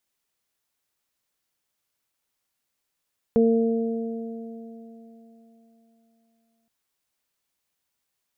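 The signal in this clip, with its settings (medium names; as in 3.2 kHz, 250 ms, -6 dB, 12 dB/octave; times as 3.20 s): additive tone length 3.32 s, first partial 228 Hz, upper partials 1/-16.5 dB, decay 3.67 s, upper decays 2.81/4.54 s, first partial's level -17.5 dB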